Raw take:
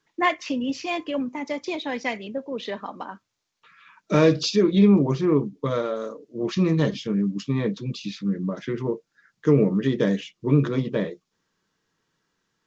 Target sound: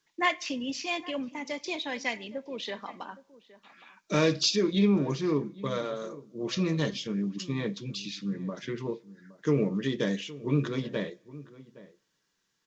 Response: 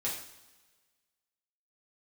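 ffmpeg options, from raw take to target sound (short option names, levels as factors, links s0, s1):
-filter_complex "[0:a]highshelf=f=2000:g=10,bandreject=f=1300:w=22,asplit=2[s0][s1];[s1]adelay=816.3,volume=0.126,highshelf=f=4000:g=-18.4[s2];[s0][s2]amix=inputs=2:normalize=0,asplit=2[s3][s4];[1:a]atrim=start_sample=2205[s5];[s4][s5]afir=irnorm=-1:irlink=0,volume=0.0708[s6];[s3][s6]amix=inputs=2:normalize=0,volume=0.398"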